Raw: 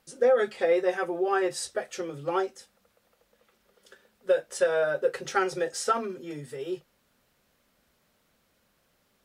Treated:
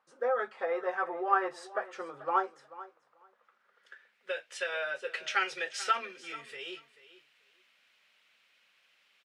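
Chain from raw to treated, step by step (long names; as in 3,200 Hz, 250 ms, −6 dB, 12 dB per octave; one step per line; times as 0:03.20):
repeating echo 437 ms, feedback 17%, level −17 dB
band-pass filter sweep 1,100 Hz → 2,600 Hz, 0:03.32–0:04.40
speech leveller within 5 dB 2 s
level +6 dB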